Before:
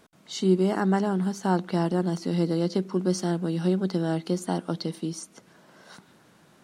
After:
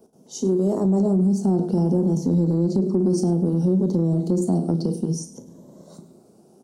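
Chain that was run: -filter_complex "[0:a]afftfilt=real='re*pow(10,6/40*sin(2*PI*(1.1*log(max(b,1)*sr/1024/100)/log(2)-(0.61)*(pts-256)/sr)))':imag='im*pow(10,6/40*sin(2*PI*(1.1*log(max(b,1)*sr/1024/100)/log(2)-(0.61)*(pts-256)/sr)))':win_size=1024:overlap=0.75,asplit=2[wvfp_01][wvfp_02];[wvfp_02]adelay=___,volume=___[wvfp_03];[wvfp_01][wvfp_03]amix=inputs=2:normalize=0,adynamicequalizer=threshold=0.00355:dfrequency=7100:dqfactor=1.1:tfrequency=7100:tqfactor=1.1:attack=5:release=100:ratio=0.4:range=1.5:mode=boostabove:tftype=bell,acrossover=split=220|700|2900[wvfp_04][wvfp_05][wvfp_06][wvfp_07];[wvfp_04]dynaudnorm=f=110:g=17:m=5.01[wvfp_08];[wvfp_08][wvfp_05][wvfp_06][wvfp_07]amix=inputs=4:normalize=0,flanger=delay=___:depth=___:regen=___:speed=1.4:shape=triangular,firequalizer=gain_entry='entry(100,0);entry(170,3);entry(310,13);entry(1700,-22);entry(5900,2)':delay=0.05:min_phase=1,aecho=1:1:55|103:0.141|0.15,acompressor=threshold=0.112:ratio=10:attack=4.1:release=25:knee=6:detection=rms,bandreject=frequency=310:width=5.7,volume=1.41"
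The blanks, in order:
36, 0.251, 8.2, 5.6, -71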